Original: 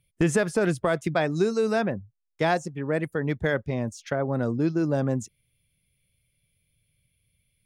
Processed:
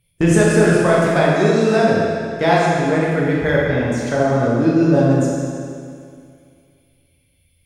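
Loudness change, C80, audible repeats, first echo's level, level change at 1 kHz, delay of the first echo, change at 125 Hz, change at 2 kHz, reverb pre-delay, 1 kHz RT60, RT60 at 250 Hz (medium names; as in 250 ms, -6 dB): +10.0 dB, -0.5 dB, no echo, no echo, +11.0 dB, no echo, +10.5 dB, +10.0 dB, 12 ms, 2.3 s, 2.3 s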